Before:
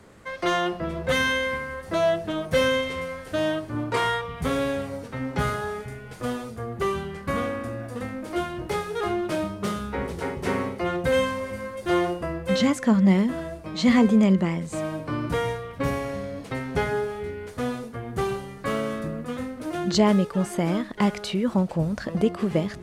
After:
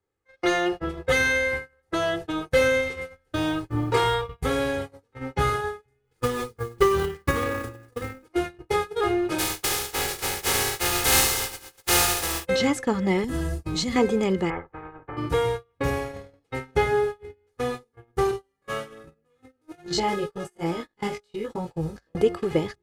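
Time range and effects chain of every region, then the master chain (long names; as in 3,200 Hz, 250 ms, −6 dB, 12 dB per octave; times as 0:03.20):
0:03.10–0:04.41: one scale factor per block 7 bits + low-shelf EQ 150 Hz +7.5 dB
0:06.04–0:08.28: one scale factor per block 5 bits + parametric band 700 Hz −13 dB 0.28 octaves + transient designer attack +7 dB, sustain +11 dB
0:09.38–0:12.44: compressing power law on the bin magnitudes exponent 0.25 + flutter between parallel walls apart 12 metres, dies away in 0.68 s
0:13.24–0:13.96: bass and treble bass +12 dB, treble +11 dB + downward compressor 5 to 1, threshold −22 dBFS
0:14.50–0:15.17: low-pass filter 1,100 Hz 24 dB per octave + every bin compressed towards the loudest bin 4 to 1
0:18.31–0:22.13: spectrum averaged block by block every 50 ms + high-shelf EQ 2,700 Hz +3.5 dB + chorus effect 1.2 Hz, delay 17.5 ms, depth 2.2 ms
whole clip: noise gate −29 dBFS, range −33 dB; comb filter 2.4 ms, depth 66%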